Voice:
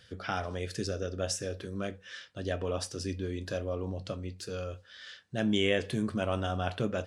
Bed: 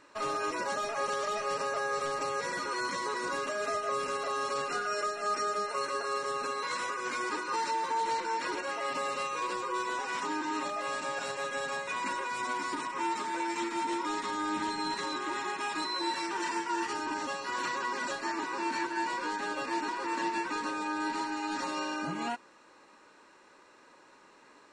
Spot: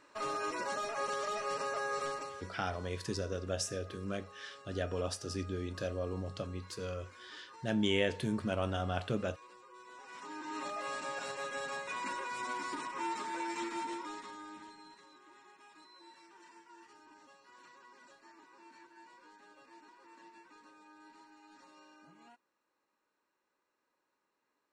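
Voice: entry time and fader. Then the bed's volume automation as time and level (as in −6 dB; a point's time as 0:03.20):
2.30 s, −3.0 dB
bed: 0:02.09 −4 dB
0:02.60 −22.5 dB
0:09.76 −22.5 dB
0:10.69 −5 dB
0:13.74 −5 dB
0:15.05 −25 dB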